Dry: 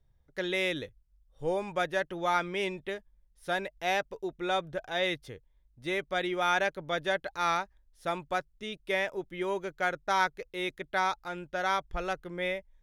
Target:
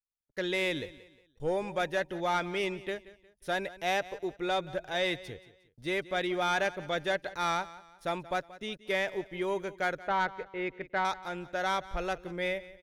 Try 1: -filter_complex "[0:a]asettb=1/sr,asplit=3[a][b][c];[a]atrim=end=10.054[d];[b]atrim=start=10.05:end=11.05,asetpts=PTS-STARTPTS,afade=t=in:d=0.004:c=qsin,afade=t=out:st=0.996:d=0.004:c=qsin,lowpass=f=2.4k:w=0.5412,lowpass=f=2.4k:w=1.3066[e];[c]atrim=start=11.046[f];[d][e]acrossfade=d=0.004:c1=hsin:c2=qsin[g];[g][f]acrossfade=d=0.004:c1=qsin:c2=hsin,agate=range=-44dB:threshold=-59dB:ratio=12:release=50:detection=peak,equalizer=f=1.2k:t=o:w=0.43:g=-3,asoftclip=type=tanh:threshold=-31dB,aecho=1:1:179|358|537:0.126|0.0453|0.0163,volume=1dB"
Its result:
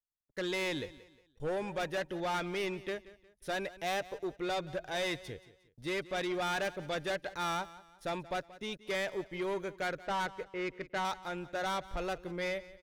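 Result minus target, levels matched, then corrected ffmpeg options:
soft clip: distortion +10 dB
-filter_complex "[0:a]asettb=1/sr,asplit=3[a][b][c];[a]atrim=end=10.054[d];[b]atrim=start=10.05:end=11.05,asetpts=PTS-STARTPTS,afade=t=in:d=0.004:c=qsin,afade=t=out:st=0.996:d=0.004:c=qsin,lowpass=f=2.4k:w=0.5412,lowpass=f=2.4k:w=1.3066[e];[c]atrim=start=11.046[f];[d][e]acrossfade=d=0.004:c1=hsin:c2=qsin[g];[g][f]acrossfade=d=0.004:c1=qsin:c2=hsin,agate=range=-44dB:threshold=-59dB:ratio=12:release=50:detection=peak,equalizer=f=1.2k:t=o:w=0.43:g=-3,asoftclip=type=tanh:threshold=-21.5dB,aecho=1:1:179|358|537:0.126|0.0453|0.0163,volume=1dB"

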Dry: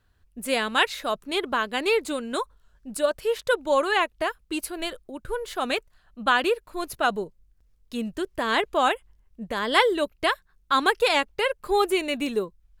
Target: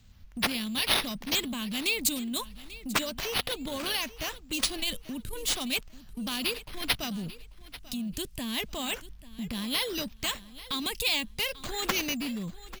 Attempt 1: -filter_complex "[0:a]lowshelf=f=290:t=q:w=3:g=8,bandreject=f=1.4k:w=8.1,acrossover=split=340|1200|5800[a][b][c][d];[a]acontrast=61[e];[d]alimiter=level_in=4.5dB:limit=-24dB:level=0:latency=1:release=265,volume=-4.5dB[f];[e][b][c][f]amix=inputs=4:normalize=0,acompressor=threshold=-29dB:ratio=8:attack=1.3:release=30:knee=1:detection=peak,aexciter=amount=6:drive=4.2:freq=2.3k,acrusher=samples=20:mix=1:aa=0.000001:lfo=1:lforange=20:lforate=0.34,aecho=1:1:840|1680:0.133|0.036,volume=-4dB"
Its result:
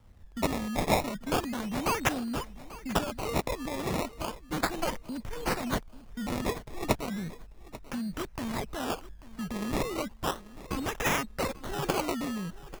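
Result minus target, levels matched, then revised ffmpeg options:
decimation with a swept rate: distortion +9 dB
-filter_complex "[0:a]lowshelf=f=290:t=q:w=3:g=8,bandreject=f=1.4k:w=8.1,acrossover=split=340|1200|5800[a][b][c][d];[a]acontrast=61[e];[d]alimiter=level_in=4.5dB:limit=-24dB:level=0:latency=1:release=265,volume=-4.5dB[f];[e][b][c][f]amix=inputs=4:normalize=0,acompressor=threshold=-29dB:ratio=8:attack=1.3:release=30:knee=1:detection=peak,aexciter=amount=6:drive=4.2:freq=2.3k,acrusher=samples=4:mix=1:aa=0.000001:lfo=1:lforange=4:lforate=0.34,aecho=1:1:840|1680:0.133|0.036,volume=-4dB"

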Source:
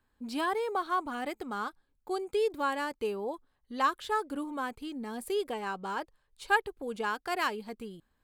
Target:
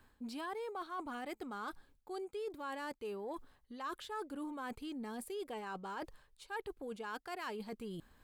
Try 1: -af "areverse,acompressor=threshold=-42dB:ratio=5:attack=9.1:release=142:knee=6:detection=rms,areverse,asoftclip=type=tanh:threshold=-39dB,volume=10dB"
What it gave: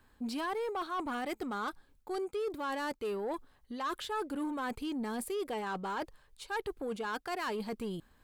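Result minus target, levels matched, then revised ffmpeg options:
compressor: peak gain reduction -8.5 dB
-af "areverse,acompressor=threshold=-52.5dB:ratio=5:attack=9.1:release=142:knee=6:detection=rms,areverse,asoftclip=type=tanh:threshold=-39dB,volume=10dB"

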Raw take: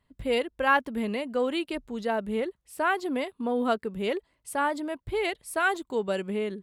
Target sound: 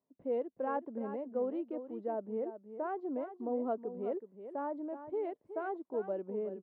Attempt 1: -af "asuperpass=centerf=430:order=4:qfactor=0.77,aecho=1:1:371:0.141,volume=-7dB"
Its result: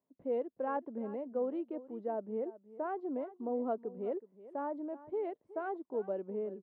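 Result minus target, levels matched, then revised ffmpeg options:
echo-to-direct -6 dB
-af "asuperpass=centerf=430:order=4:qfactor=0.77,aecho=1:1:371:0.282,volume=-7dB"

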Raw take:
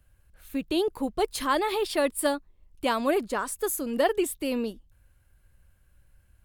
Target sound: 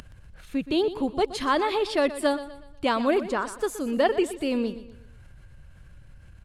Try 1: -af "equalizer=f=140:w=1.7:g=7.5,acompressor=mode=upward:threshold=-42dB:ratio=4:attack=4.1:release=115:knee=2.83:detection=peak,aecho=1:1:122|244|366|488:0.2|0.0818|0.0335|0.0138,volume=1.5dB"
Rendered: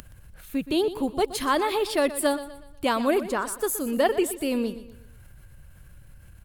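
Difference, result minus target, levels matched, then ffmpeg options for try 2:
8000 Hz band +8.0 dB
-af "lowpass=6.1k,equalizer=f=140:w=1.7:g=7.5,acompressor=mode=upward:threshold=-42dB:ratio=4:attack=4.1:release=115:knee=2.83:detection=peak,aecho=1:1:122|244|366|488:0.2|0.0818|0.0335|0.0138,volume=1.5dB"

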